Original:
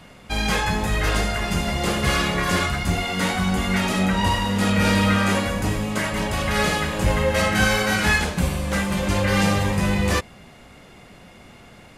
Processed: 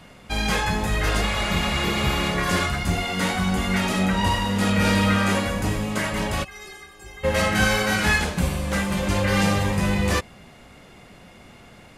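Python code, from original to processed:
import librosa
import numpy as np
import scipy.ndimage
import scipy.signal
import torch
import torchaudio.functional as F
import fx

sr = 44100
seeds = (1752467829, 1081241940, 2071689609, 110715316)

y = fx.spec_repair(x, sr, seeds[0], start_s=1.25, length_s=0.98, low_hz=490.0, high_hz=11000.0, source='after')
y = fx.stiff_resonator(y, sr, f0_hz=380.0, decay_s=0.27, stiffness=0.008, at=(6.43, 7.23), fade=0.02)
y = y * librosa.db_to_amplitude(-1.0)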